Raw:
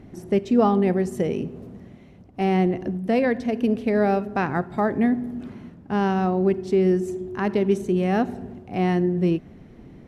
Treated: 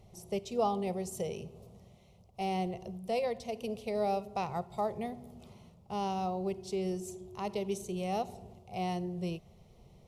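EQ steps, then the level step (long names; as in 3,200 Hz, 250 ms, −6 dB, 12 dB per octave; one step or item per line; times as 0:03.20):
high-shelf EQ 2,300 Hz +10.5 dB
phaser with its sweep stopped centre 680 Hz, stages 4
−8.5 dB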